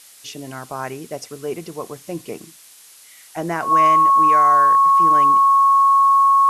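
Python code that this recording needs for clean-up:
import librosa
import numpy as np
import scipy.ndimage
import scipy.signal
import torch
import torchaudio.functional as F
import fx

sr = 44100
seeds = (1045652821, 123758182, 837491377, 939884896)

y = fx.notch(x, sr, hz=1100.0, q=30.0)
y = fx.noise_reduce(y, sr, print_start_s=2.52, print_end_s=3.02, reduce_db=17.0)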